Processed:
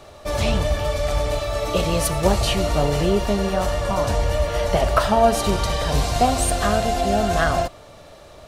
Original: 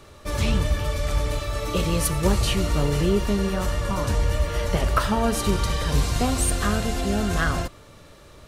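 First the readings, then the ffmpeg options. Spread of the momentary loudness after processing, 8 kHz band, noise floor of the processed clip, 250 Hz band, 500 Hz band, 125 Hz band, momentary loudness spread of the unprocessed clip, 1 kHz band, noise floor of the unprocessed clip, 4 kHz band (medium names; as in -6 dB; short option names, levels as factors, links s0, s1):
5 LU, +1.5 dB, -44 dBFS, +0.5 dB, +7.0 dB, 0.0 dB, 4 LU, +7.0 dB, -48 dBFS, +3.0 dB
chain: -filter_complex "[0:a]equalizer=f=690:w=2.2:g=13,acrossover=split=5100[s0][s1];[s0]crystalizer=i=2:c=0[s2];[s2][s1]amix=inputs=2:normalize=0"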